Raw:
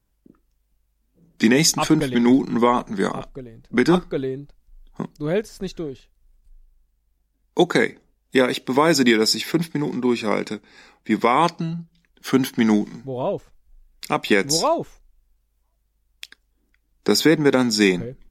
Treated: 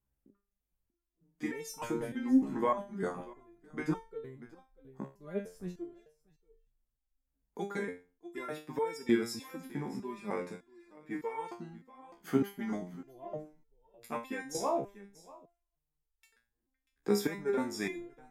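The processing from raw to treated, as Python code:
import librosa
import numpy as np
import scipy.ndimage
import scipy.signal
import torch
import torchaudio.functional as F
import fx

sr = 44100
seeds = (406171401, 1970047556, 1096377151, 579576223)

y = fx.peak_eq(x, sr, hz=4200.0, db=-12.5, octaves=1.3)
y = y + 10.0 ** (-19.5 / 20.0) * np.pad(y, (int(638 * sr / 1000.0), 0))[:len(y)]
y = fx.resonator_held(y, sr, hz=3.3, low_hz=68.0, high_hz=450.0)
y = y * 10.0 ** (-3.5 / 20.0)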